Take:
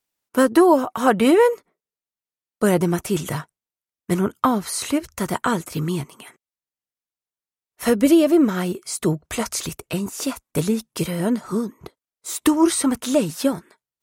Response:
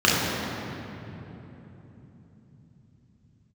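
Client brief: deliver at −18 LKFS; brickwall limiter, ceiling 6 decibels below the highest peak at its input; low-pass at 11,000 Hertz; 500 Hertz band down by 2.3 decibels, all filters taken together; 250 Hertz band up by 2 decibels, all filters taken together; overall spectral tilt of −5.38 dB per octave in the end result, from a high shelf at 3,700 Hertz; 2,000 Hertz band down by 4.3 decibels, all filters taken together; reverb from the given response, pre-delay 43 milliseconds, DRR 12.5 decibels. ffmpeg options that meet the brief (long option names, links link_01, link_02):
-filter_complex "[0:a]lowpass=11000,equalizer=frequency=250:width_type=o:gain=4.5,equalizer=frequency=500:width_type=o:gain=-5,equalizer=frequency=2000:width_type=o:gain=-6.5,highshelf=frequency=3700:gain=3.5,alimiter=limit=-9.5dB:level=0:latency=1,asplit=2[link_01][link_02];[1:a]atrim=start_sample=2205,adelay=43[link_03];[link_02][link_03]afir=irnorm=-1:irlink=0,volume=-34dB[link_04];[link_01][link_04]amix=inputs=2:normalize=0,volume=3.5dB"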